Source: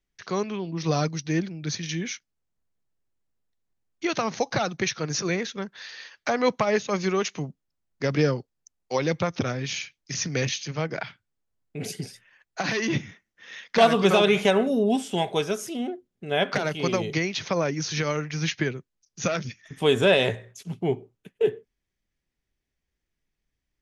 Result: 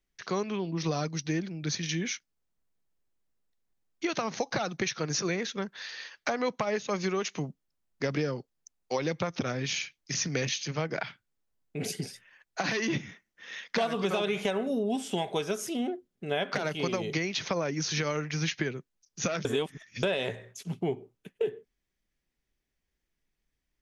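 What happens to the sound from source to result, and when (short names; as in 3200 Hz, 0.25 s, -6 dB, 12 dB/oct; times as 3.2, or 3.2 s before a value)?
19.45–20.03 reverse
whole clip: bell 94 Hz -6.5 dB 0.76 oct; compressor 6:1, threshold -26 dBFS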